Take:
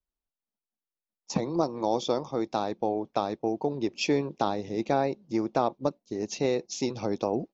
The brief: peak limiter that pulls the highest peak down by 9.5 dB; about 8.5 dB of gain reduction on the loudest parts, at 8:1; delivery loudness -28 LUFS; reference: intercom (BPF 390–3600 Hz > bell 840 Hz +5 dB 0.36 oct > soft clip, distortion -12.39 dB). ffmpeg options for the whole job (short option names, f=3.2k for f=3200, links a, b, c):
-af "acompressor=threshold=-29dB:ratio=8,alimiter=level_in=1dB:limit=-24dB:level=0:latency=1,volume=-1dB,highpass=390,lowpass=3.6k,equalizer=f=840:t=o:w=0.36:g=5,asoftclip=threshold=-32.5dB,volume=14dB"